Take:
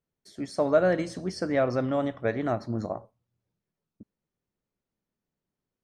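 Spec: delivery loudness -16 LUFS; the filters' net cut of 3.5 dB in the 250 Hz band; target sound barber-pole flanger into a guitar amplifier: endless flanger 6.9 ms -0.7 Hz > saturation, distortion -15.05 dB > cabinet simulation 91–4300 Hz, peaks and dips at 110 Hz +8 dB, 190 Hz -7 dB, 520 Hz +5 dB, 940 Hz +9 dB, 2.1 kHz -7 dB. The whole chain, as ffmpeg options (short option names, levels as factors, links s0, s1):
-filter_complex "[0:a]equalizer=f=250:t=o:g=-3.5,asplit=2[s0][s1];[s1]adelay=6.9,afreqshift=-0.7[s2];[s0][s2]amix=inputs=2:normalize=1,asoftclip=threshold=0.126,highpass=91,equalizer=f=110:t=q:w=4:g=8,equalizer=f=190:t=q:w=4:g=-7,equalizer=f=520:t=q:w=4:g=5,equalizer=f=940:t=q:w=4:g=9,equalizer=f=2100:t=q:w=4:g=-7,lowpass=f=4300:w=0.5412,lowpass=f=4300:w=1.3066,volume=5.01"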